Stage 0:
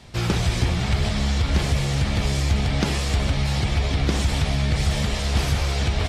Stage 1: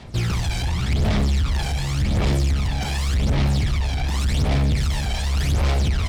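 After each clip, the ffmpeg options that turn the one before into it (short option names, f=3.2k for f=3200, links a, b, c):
-af "volume=22.5dB,asoftclip=hard,volume=-22.5dB,aphaser=in_gain=1:out_gain=1:delay=1.3:decay=0.63:speed=0.88:type=sinusoidal,volume=-1.5dB"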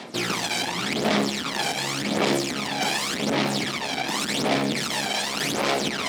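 -af "areverse,acompressor=mode=upward:threshold=-22dB:ratio=2.5,areverse,highpass=f=230:w=0.5412,highpass=f=230:w=1.3066,volume=5dB"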